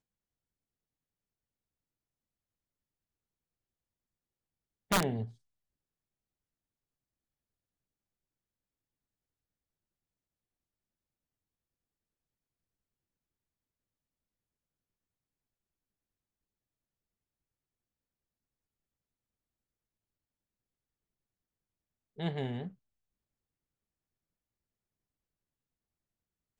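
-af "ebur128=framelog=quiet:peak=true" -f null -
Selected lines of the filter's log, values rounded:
Integrated loudness:
  I:         -34.6 LUFS
  Threshold: -45.7 LUFS
Loudness range:
  LRA:         7.5 LU
  Threshold: -61.4 LUFS
  LRA low:   -46.6 LUFS
  LRA high:  -39.1 LUFS
True peak:
  Peak:      -17.0 dBFS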